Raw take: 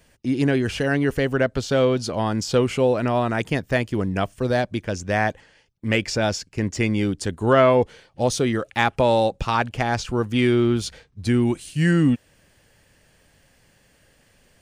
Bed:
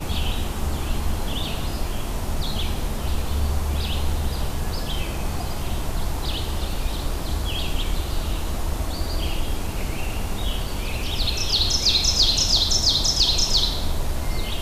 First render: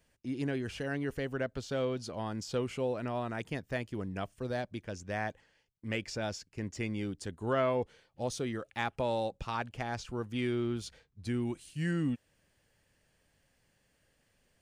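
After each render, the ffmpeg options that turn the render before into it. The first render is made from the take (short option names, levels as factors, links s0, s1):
-af "volume=0.2"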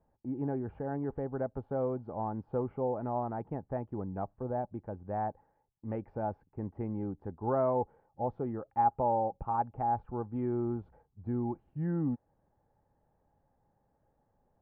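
-af "lowpass=f=1100:w=0.5412,lowpass=f=1100:w=1.3066,equalizer=f=830:t=o:w=0.21:g=13"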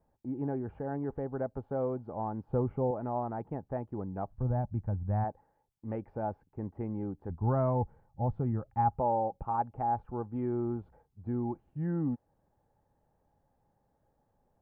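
-filter_complex "[0:a]asettb=1/sr,asplit=3[s0][s1][s2];[s0]atrim=end=2.494[s3];[s1]atrim=start=2.49:end=2.91,asetpts=PTS-STARTPTS,afade=t=in:d=0.004:c=qsin,afade=t=out:st=0.416:d=0.004:c=qsin,lowshelf=f=160:g=12[s4];[s2]atrim=start=2.906[s5];[s3][s4]acrossfade=d=0.004:c1=hsin:c2=qsin[s6];[s6][s5]acrossfade=d=0.004:c1=qsin:c2=hsin,asplit=3[s7][s8][s9];[s7]afade=t=out:st=4.3:d=0.02[s10];[s8]asubboost=boost=9:cutoff=130,afade=t=in:st=4.3:d=0.02,afade=t=out:st=5.23:d=0.02[s11];[s9]afade=t=in:st=5.23:d=0.02[s12];[s10][s11][s12]amix=inputs=3:normalize=0,asplit=3[s13][s14][s15];[s13]afade=t=out:st=7.29:d=0.02[s16];[s14]asubboost=boost=5.5:cutoff=160,afade=t=in:st=7.29:d=0.02,afade=t=out:st=8.98:d=0.02[s17];[s15]afade=t=in:st=8.98:d=0.02[s18];[s16][s17][s18]amix=inputs=3:normalize=0"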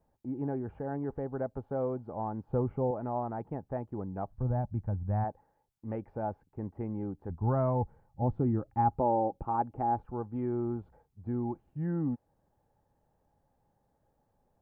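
-filter_complex "[0:a]asettb=1/sr,asplit=3[s0][s1][s2];[s0]atrim=end=8.224[s3];[s1]atrim=start=8.22:end=10.06,asetpts=PTS-STARTPTS,afade=t=in:d=0.004:c=qsin,afade=t=out:st=1.836:d=0.004:c=qsin,equalizer=f=310:t=o:w=0.77:g=9[s4];[s2]atrim=start=10.056[s5];[s3][s4]acrossfade=d=0.004:c1=hsin:c2=qsin[s6];[s6][s5]acrossfade=d=0.004:c1=qsin:c2=hsin"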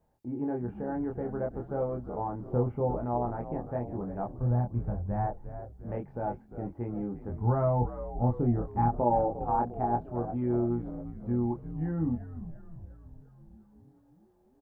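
-filter_complex "[0:a]asplit=2[s0][s1];[s1]adelay=25,volume=0.708[s2];[s0][s2]amix=inputs=2:normalize=0,asplit=8[s3][s4][s5][s6][s7][s8][s9][s10];[s4]adelay=350,afreqshift=-76,volume=0.266[s11];[s5]adelay=700,afreqshift=-152,volume=0.162[s12];[s6]adelay=1050,afreqshift=-228,volume=0.0989[s13];[s7]adelay=1400,afreqshift=-304,volume=0.0603[s14];[s8]adelay=1750,afreqshift=-380,volume=0.0367[s15];[s9]adelay=2100,afreqshift=-456,volume=0.0224[s16];[s10]adelay=2450,afreqshift=-532,volume=0.0136[s17];[s3][s11][s12][s13][s14][s15][s16][s17]amix=inputs=8:normalize=0"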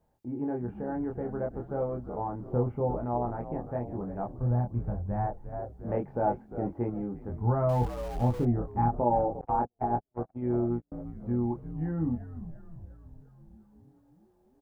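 -filter_complex "[0:a]asettb=1/sr,asplit=3[s0][s1][s2];[s0]atrim=end=5.524[s3];[s1]atrim=start=5.52:end=6.9,asetpts=PTS-STARTPTS,afade=t=in:d=0.004:c=qsin,afade=t=out:st=1.376:d=0.004:c=qsin,equalizer=f=580:w=0.31:g=6.5[s4];[s2]atrim=start=6.896[s5];[s3][s4]acrossfade=d=0.004:c1=hsin:c2=qsin[s6];[s6][s5]acrossfade=d=0.004:c1=qsin:c2=hsin,asettb=1/sr,asplit=3[s7][s8][s9];[s7]atrim=end=7.694[s10];[s8]atrim=start=7.69:end=8.45,asetpts=PTS-STARTPTS,afade=t=in:d=0.004:c=qsin,afade=t=out:st=0.756:d=0.004:c=qsin,aeval=exprs='val(0)+0.5*0.01*sgn(val(0))':c=same[s11];[s9]atrim=start=8.446[s12];[s10][s11]acrossfade=d=0.004:c1=hsin:c2=qsin[s13];[s13][s12]acrossfade=d=0.004:c1=qsin:c2=hsin,asettb=1/sr,asplit=3[s14][s15][s16];[s14]atrim=end=9.414[s17];[s15]atrim=start=9.41:end=10.92,asetpts=PTS-STARTPTS,afade=t=in:d=0.004:c=qsin,afade=t=out:st=1.506:d=0.004:c=qsin,agate=range=0.00447:threshold=0.0282:ratio=16:release=100:detection=peak[s18];[s16]atrim=start=10.916[s19];[s17][s18]acrossfade=d=0.004:c1=hsin:c2=qsin[s20];[s20][s19]acrossfade=d=0.004:c1=qsin:c2=hsin"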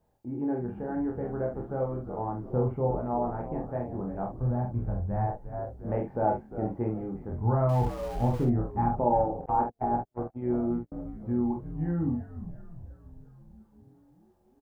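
-filter_complex "[0:a]asplit=2[s0][s1];[s1]adelay=46,volume=0.562[s2];[s0][s2]amix=inputs=2:normalize=0"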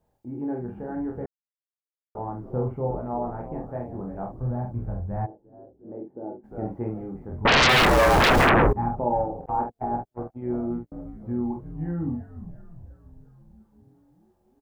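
-filter_complex "[0:a]asplit=3[s0][s1][s2];[s0]afade=t=out:st=5.25:d=0.02[s3];[s1]bandpass=f=330:t=q:w=3.1,afade=t=in:st=5.25:d=0.02,afade=t=out:st=6.43:d=0.02[s4];[s2]afade=t=in:st=6.43:d=0.02[s5];[s3][s4][s5]amix=inputs=3:normalize=0,asettb=1/sr,asplit=3[s6][s7][s8];[s6]atrim=end=7.454[s9];[s7]atrim=start=7.45:end=8.73,asetpts=PTS-STARTPTS,afade=t=in:d=0.004:c=qsin,afade=t=out:st=1.276:d=0.004:c=qsin,aeval=exprs='0.2*sin(PI/2*10*val(0)/0.2)':c=same[s10];[s8]atrim=start=8.726[s11];[s9][s10]acrossfade=d=0.004:c1=hsin:c2=qsin[s12];[s12][s11]acrossfade=d=0.004:c1=qsin:c2=hsin,asplit=3[s13][s14][s15];[s13]atrim=end=1.26,asetpts=PTS-STARTPTS,afade=t=out:st=1.256:d=0.004:c=hsin[s16];[s14]atrim=start=1.26:end=2.15,asetpts=PTS-STARTPTS,volume=0[s17];[s15]atrim=start=2.15,asetpts=PTS-STARTPTS,afade=t=in:d=0.004:c=hsin[s18];[s16][s17][s18]concat=n=3:v=0:a=1"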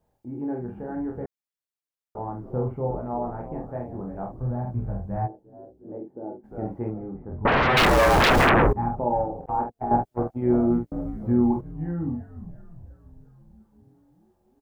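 -filter_complex "[0:a]asettb=1/sr,asplit=3[s0][s1][s2];[s0]atrim=end=4.654[s3];[s1]atrim=start=4.65:end=5.98,asetpts=PTS-STARTPTS,afade=t=in:d=0.004:c=qsin,afade=t=out:st=1.326:d=0.004:c=qsin,asplit=2[s4][s5];[s5]adelay=16,volume=0.631[s6];[s4][s6]amix=inputs=2:normalize=0,atrim=end_sample=58653[s7];[s2]atrim=start=5.976[s8];[s3][s7]acrossfade=d=0.004:c1=hsin:c2=qsin[s9];[s9][s8]acrossfade=d=0.004:c1=qsin:c2=hsin,asettb=1/sr,asplit=3[s10][s11][s12];[s10]atrim=end=6.904[s13];[s11]atrim=start=6.9:end=7.77,asetpts=PTS-STARTPTS,afade=t=in:d=0.004:c=qsin,afade=t=out:st=0.866:d=0.004:c=qsin,lowpass=1600[s14];[s12]atrim=start=7.766[s15];[s13][s14]acrossfade=d=0.004:c1=hsin:c2=qsin[s16];[s16][s15]acrossfade=d=0.004:c1=qsin:c2=hsin,asplit=3[s17][s18][s19];[s17]atrim=end=9.912[s20];[s18]atrim=start=9.908:end=11.612,asetpts=PTS-STARTPTS,volume=2.37[s21];[s19]atrim=start=11.608[s22];[s20][s21]acrossfade=d=0.004:c1=hsin:c2=hsin[s23];[s23][s22]acrossfade=d=0.004:c1=hsin:c2=hsin"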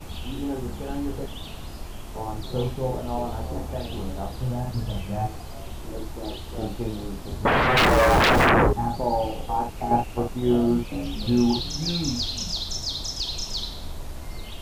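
-filter_complex "[1:a]volume=0.299[s0];[0:a][s0]amix=inputs=2:normalize=0"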